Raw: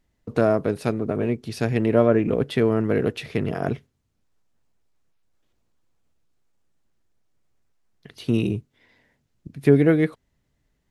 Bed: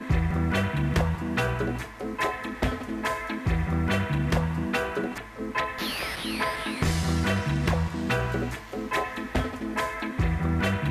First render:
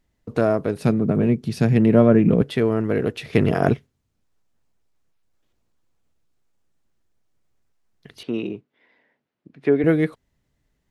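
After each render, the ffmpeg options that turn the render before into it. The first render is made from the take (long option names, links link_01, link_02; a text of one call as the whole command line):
ffmpeg -i in.wav -filter_complex "[0:a]asettb=1/sr,asplit=3[link_01][link_02][link_03];[link_01]atrim=end=0.804[link_04];[link_02]atrim=start=0.8:end=2.42,asetpts=PTS-STARTPTS,afade=type=in:duration=0.004:curve=qsin,afade=type=out:start_time=1.616:duration=0.004:curve=qsin,equalizer=frequency=170:width=1.4:gain=13[link_05];[link_03]atrim=start=2.416[link_06];[link_04][link_05]acrossfade=duration=0.004:curve1=hsin:curve2=qsin[link_07];[link_07][link_06]acrossfade=duration=0.004:curve1=qsin:curve2=hsin,asettb=1/sr,asplit=3[link_08][link_09][link_10];[link_08]atrim=end=8.234[link_11];[link_09]atrim=start=8.23:end=9.84,asetpts=PTS-STARTPTS,afade=type=in:duration=0.004:curve=qsin,afade=type=out:start_time=1.606:duration=0.004:curve=qsin,highpass=290,lowpass=2800[link_12];[link_10]atrim=start=9.836[link_13];[link_11][link_12]acrossfade=duration=0.004:curve1=hsin:curve2=qsin[link_14];[link_14][link_13]acrossfade=duration=0.004:curve1=qsin:curve2=hsin,asplit=3[link_15][link_16][link_17];[link_15]atrim=end=3.332[link_18];[link_16]atrim=start=3.328:end=3.742,asetpts=PTS-STARTPTS,volume=7dB[link_19];[link_17]atrim=start=3.738[link_20];[link_18][link_19]acrossfade=duration=0.004:curve1=hsin:curve2=hsin[link_21];[link_21][link_20]acrossfade=duration=0.004:curve1=hsin:curve2=hsin" out.wav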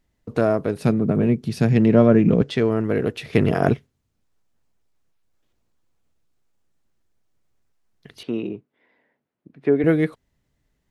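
ffmpeg -i in.wav -filter_complex "[0:a]asettb=1/sr,asplit=3[link_01][link_02][link_03];[link_01]atrim=end=1.704[link_04];[link_02]atrim=start=1.7:end=2.7,asetpts=PTS-STARTPTS,afade=type=in:duration=0.004:curve=qsin,afade=type=out:start_time=0.996:duration=0.004:curve=qsin,lowpass=frequency=6300:width_type=q:width=1.7[link_05];[link_03]atrim=start=2.696[link_06];[link_04][link_05]acrossfade=duration=0.004:curve1=hsin:curve2=qsin[link_07];[link_07][link_06]acrossfade=duration=0.004:curve1=qsin:curve2=hsin,asettb=1/sr,asplit=3[link_08][link_09][link_10];[link_08]atrim=end=8.344[link_11];[link_09]atrim=start=8.34:end=9.8,asetpts=PTS-STARTPTS,afade=type=in:duration=0.004:curve=qsin,afade=type=out:start_time=1.456:duration=0.004:curve=qsin,highshelf=frequency=2200:gain=-8[link_12];[link_10]atrim=start=9.796[link_13];[link_11][link_12]acrossfade=duration=0.004:curve1=hsin:curve2=qsin[link_14];[link_14][link_13]acrossfade=duration=0.004:curve1=qsin:curve2=hsin" out.wav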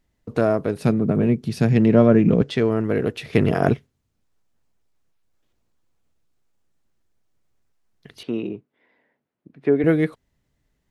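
ffmpeg -i in.wav -af anull out.wav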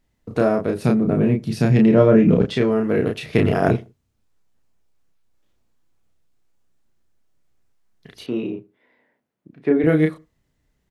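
ffmpeg -i in.wav -filter_complex "[0:a]asplit=2[link_01][link_02];[link_02]adelay=32,volume=-3.5dB[link_03];[link_01][link_03]amix=inputs=2:normalize=0,asplit=2[link_04][link_05];[link_05]adelay=79,lowpass=frequency=1200:poles=1,volume=-21dB,asplit=2[link_06][link_07];[link_07]adelay=79,lowpass=frequency=1200:poles=1,volume=0.25[link_08];[link_04][link_06][link_08]amix=inputs=3:normalize=0" out.wav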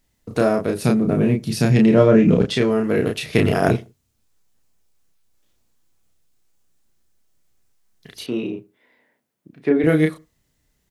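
ffmpeg -i in.wav -af "highshelf=frequency=3700:gain=11" out.wav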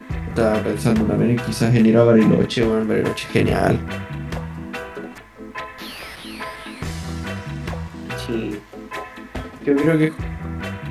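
ffmpeg -i in.wav -i bed.wav -filter_complex "[1:a]volume=-3dB[link_01];[0:a][link_01]amix=inputs=2:normalize=0" out.wav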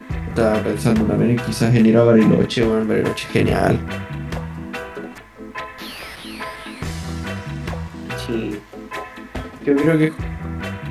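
ffmpeg -i in.wav -af "volume=1dB,alimiter=limit=-3dB:level=0:latency=1" out.wav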